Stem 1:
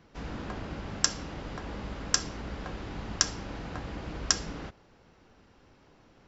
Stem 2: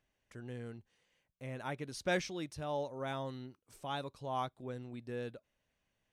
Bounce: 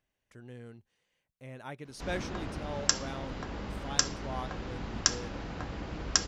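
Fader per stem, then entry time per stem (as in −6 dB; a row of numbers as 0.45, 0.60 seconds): −0.5, −2.5 decibels; 1.85, 0.00 seconds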